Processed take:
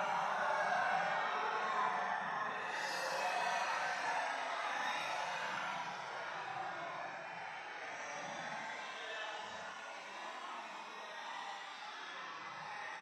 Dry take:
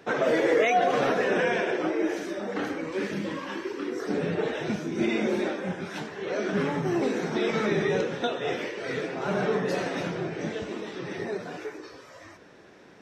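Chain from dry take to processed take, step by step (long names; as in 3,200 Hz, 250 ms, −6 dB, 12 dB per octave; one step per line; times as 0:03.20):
high-pass filter 280 Hz 6 dB per octave
low shelf with overshoot 590 Hz −13 dB, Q 3
extreme stretch with random phases 7.2×, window 0.05 s, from 0:09.30
on a send: repeating echo 105 ms, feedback 55%, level −11 dB
on the sum: every ending faded ahead of time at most 120 dB per second
level −7 dB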